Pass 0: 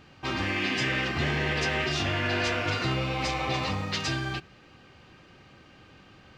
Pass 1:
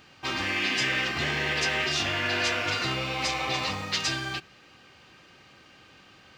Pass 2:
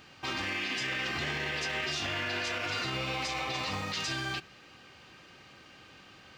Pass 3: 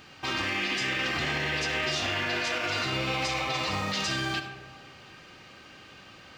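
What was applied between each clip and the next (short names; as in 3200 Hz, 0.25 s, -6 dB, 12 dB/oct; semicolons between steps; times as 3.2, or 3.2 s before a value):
tilt +2 dB/oct
limiter -25 dBFS, peak gain reduction 10 dB
reverb RT60 1.5 s, pre-delay 25 ms, DRR 7 dB; gain +3.5 dB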